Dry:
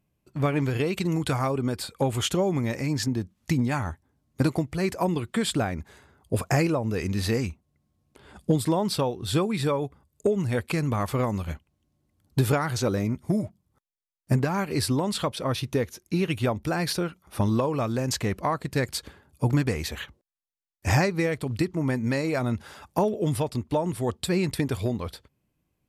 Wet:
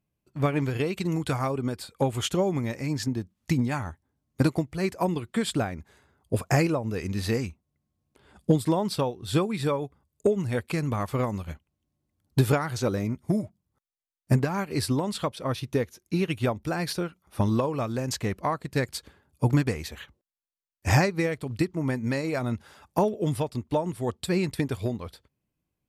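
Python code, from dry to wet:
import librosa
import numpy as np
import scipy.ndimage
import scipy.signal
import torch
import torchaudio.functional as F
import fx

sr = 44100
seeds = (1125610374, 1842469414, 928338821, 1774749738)

y = fx.upward_expand(x, sr, threshold_db=-35.0, expansion=1.5)
y = y * librosa.db_to_amplitude(2.0)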